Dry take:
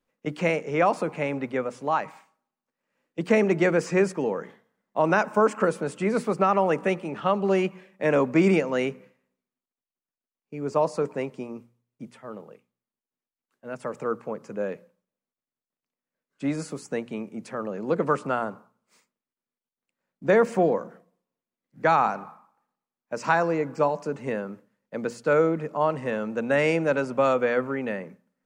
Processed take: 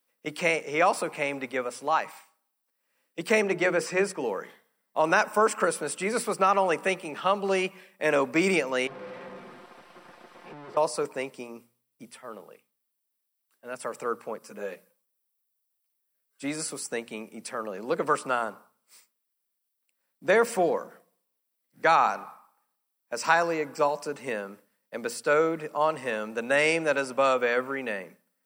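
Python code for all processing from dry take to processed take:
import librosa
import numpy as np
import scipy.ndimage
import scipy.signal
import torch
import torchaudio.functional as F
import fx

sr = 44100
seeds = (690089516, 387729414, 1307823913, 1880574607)

y = fx.chain(x, sr, fx.high_shelf(hz=3900.0, db=-7.5),
    fx.hum_notches(base_hz=60, count=8), at=(3.42, 4.24))
y = fx.chain(y, sr, fx.clip_1bit(),
    fx.lowpass(hz=1200.0, slope=12),
    fx.comb(ms=5.7, depth=0.56), at=(8.87, 10.77))
y = fx.chain(y, sr, fx.high_shelf(hz=6900.0, db=6.5),
    fx.ensemble(), at=(14.39, 16.44))
y = fx.riaa(y, sr, side='recording')
y = fx.notch(y, sr, hz=6700.0, q=5.3)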